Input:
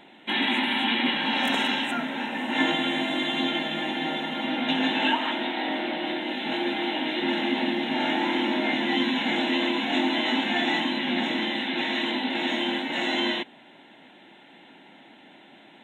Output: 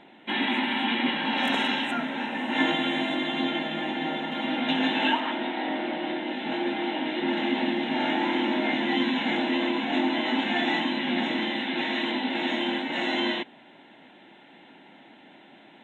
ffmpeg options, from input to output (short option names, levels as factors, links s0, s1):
-af "asetnsamples=n=441:p=0,asendcmd='1.38 lowpass f 4500;3.15 lowpass f 2600;4.32 lowpass f 4900;5.2 lowpass f 2100;7.37 lowpass f 3400;9.37 lowpass f 2300;10.39 lowpass f 3700',lowpass=f=2600:p=1"